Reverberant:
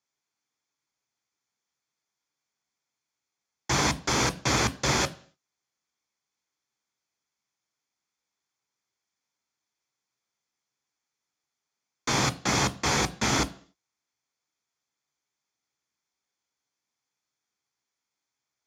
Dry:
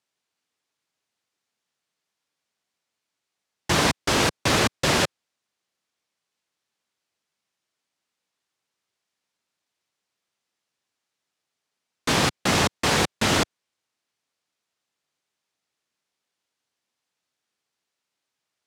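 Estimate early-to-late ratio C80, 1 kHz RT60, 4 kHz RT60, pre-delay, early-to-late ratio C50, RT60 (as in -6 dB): 23.5 dB, 0.50 s, 0.55 s, 12 ms, 19.5 dB, 0.50 s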